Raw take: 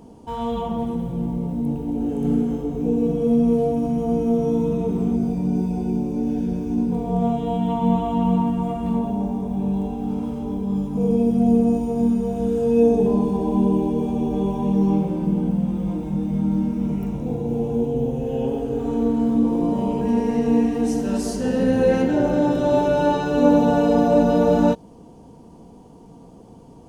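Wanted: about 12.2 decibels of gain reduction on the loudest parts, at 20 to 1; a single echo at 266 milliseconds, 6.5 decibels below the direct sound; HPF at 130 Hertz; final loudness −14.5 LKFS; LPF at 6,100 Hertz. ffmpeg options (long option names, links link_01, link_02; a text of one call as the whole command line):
ffmpeg -i in.wav -af "highpass=130,lowpass=6100,acompressor=threshold=-23dB:ratio=20,aecho=1:1:266:0.473,volume=12.5dB" out.wav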